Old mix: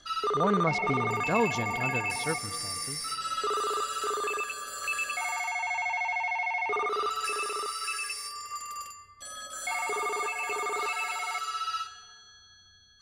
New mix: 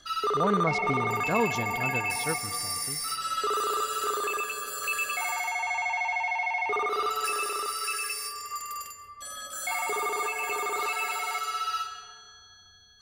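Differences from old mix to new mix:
background: send +9.0 dB
master: remove low-pass filter 10,000 Hz 12 dB per octave

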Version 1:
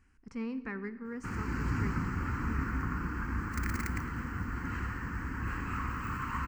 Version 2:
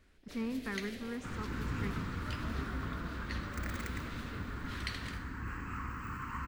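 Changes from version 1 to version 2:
first sound: unmuted
second sound −5.0 dB

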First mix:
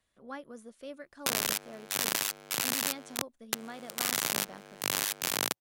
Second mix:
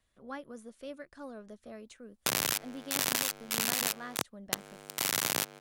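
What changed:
background: entry +1.00 s
master: add low-shelf EQ 91 Hz +8.5 dB

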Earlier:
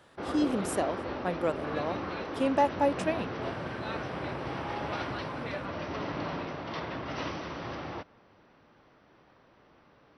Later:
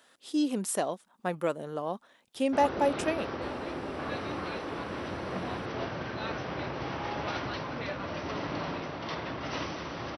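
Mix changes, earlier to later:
background: entry +2.35 s
master: add high-shelf EQ 4,800 Hz +7 dB

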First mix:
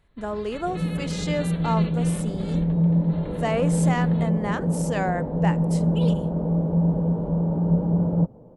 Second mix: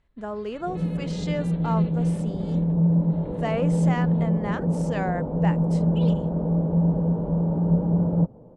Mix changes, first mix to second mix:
speech: send off
first sound −9.5 dB
master: add high-frequency loss of the air 75 metres

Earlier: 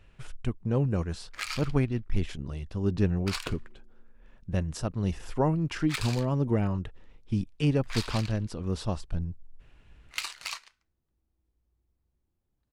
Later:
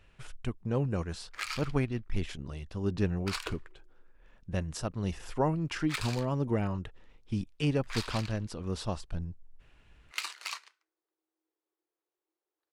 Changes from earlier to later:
speech: add low-shelf EQ 420 Hz −5 dB
background: add Chebyshev high-pass with heavy ripple 310 Hz, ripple 3 dB

